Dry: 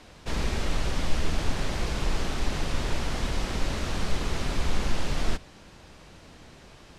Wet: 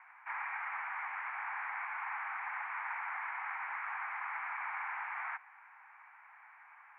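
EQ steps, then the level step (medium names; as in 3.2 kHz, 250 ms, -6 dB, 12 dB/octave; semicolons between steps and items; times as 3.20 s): steep high-pass 820 Hz 72 dB/octave; Chebyshev low-pass 2.3 kHz, order 6; +1.0 dB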